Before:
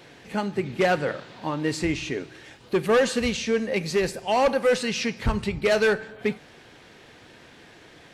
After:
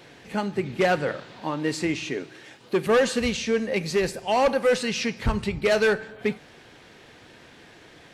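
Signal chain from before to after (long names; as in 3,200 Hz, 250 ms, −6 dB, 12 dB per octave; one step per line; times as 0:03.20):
0:01.40–0:02.87: high-pass filter 140 Hz 12 dB per octave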